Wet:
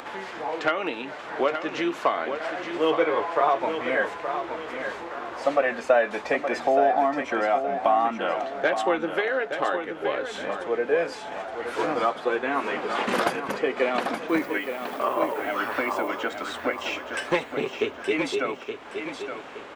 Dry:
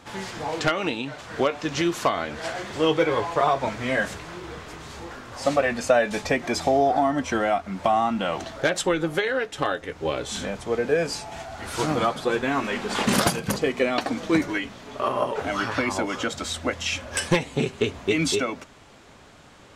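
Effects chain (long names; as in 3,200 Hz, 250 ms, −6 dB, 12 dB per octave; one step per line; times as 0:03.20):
three-way crossover with the lows and the highs turned down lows −20 dB, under 280 Hz, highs −15 dB, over 3,000 Hz
upward compression, threshold −31 dBFS
0:14.28–0:16.07: background noise violet −52 dBFS
repeating echo 871 ms, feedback 39%, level −8 dB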